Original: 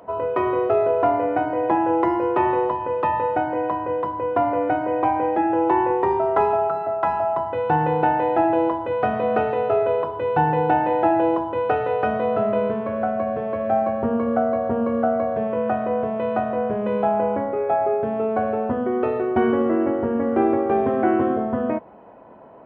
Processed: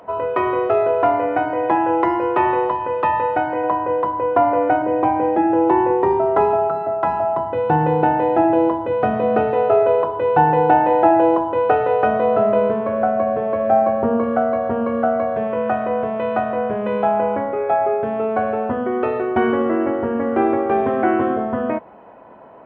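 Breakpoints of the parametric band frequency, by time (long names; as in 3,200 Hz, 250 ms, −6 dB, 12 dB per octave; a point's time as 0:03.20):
parametric band +5.5 dB 3 octaves
2,100 Hz
from 0:03.64 910 Hz
from 0:04.82 230 Hz
from 0:09.54 700 Hz
from 0:14.24 2,000 Hz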